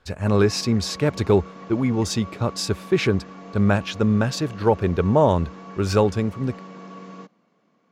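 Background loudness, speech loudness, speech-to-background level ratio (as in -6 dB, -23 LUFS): -40.5 LUFS, -22.0 LUFS, 18.5 dB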